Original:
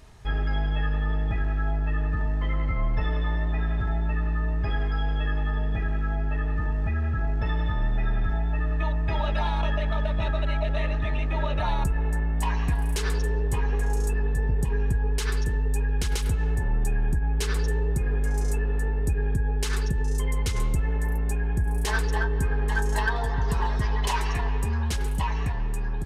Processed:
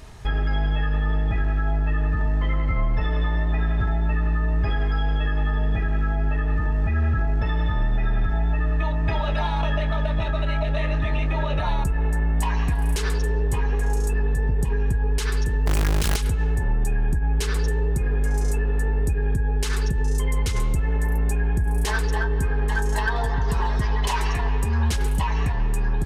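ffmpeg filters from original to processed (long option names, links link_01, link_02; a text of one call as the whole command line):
ffmpeg -i in.wav -filter_complex "[0:a]asettb=1/sr,asplit=3[link_01][link_02][link_03];[link_01]atrim=end=8.854[link_04];[link_02]atrim=start=8.85:end=11.82,asetpts=PTS-STARTPTS,afade=type=in:duration=0.004:curve=qsin,afade=type=out:start_time=2.966:duration=0.004:curve=qsin,asplit=2[link_05][link_06];[link_06]adelay=26,volume=-11dB[link_07];[link_05][link_07]amix=inputs=2:normalize=0,atrim=end_sample=130977[link_08];[link_03]atrim=start=11.816[link_09];[link_04][link_08]acrossfade=duration=0.004:curve1=hsin:curve2=qsin[link_10];[link_10][link_09]acrossfade=duration=0.004:curve1=qsin:curve2=hsin,asettb=1/sr,asplit=3[link_11][link_12][link_13];[link_11]atrim=end=15.664[link_14];[link_12]atrim=start=15.66:end=16.16,asetpts=PTS-STARTPTS,afade=type=in:duration=0.004:curve=qsin,afade=type=out:start_time=0.496:duration=0.004:curve=qsin,acrusher=bits=5:dc=4:mix=0:aa=0.000001[link_15];[link_13]atrim=start=16.156[link_16];[link_14][link_15]acrossfade=duration=0.004:curve1=hsin:curve2=qsin[link_17];[link_17][link_16]acrossfade=duration=0.004:curve1=qsin:curve2=hsin,alimiter=limit=-22dB:level=0:latency=1:release=302,volume=7.5dB" out.wav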